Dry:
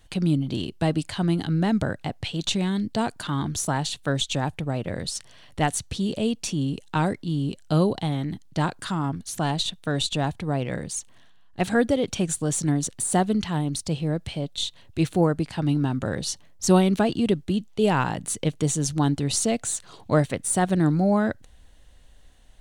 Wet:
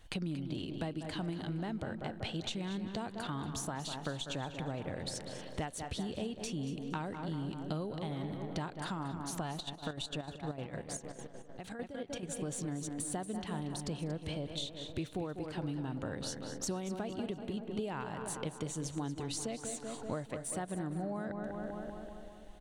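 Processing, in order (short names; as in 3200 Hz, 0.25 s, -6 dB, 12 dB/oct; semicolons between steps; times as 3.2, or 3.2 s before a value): tone controls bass -6 dB, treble -4 dB; tape echo 0.193 s, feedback 65%, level -9 dB, low-pass 2100 Hz; compressor 10:1, threshold -35 dBFS, peak gain reduction 20 dB; low shelf 130 Hz +6.5 dB; feedback echo 0.233 s, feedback 32%, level -13.5 dB; 9.52–12.23 chopper 6.6 Hz, depth 65%, duty 55%; gain -1.5 dB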